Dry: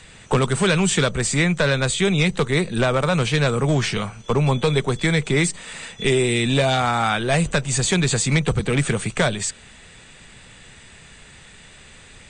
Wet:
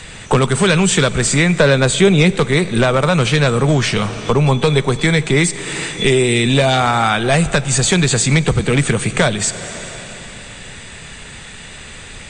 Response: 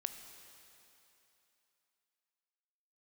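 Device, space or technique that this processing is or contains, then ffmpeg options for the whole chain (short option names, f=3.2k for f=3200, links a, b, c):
ducked reverb: -filter_complex "[0:a]asettb=1/sr,asplit=3[a][b][c];[a]atrim=end=1.544[d];[b]atrim=start=1.54:end=2.36,asetpts=PTS-STARTPTS,afade=t=in:d=0.004:c=qsin,afade=t=out:st=0.816:d=0.004:c=qsin,equalizer=f=370:t=o:w=2.3:g=5.5[e];[c]atrim=start=2.356[f];[d][e]acrossfade=d=0.004:c1=hsin:c2=qsin[g];[g][f]acrossfade=d=0.004:c1=qsin:c2=hsin,asplit=3[h][i][j];[1:a]atrim=start_sample=2205[k];[i][k]afir=irnorm=-1:irlink=0[l];[j]apad=whole_len=542393[m];[l][m]sidechaincompress=threshold=-25dB:ratio=8:attack=5.7:release=448,volume=7.5dB[n];[h][n]amix=inputs=2:normalize=0,volume=1.5dB"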